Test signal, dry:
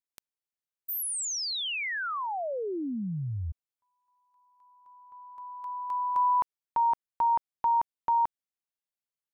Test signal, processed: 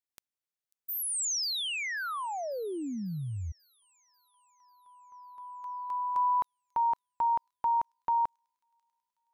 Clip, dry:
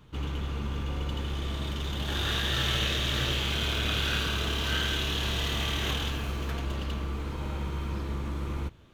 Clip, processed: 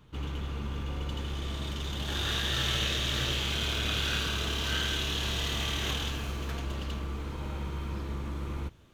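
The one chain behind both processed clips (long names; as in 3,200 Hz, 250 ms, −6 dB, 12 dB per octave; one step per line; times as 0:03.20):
dynamic equaliser 6,400 Hz, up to +4 dB, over −48 dBFS, Q 0.83
on a send: delay with a high-pass on its return 542 ms, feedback 60%, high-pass 5,500 Hz, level −18.5 dB
on the sum: level −2.5 dB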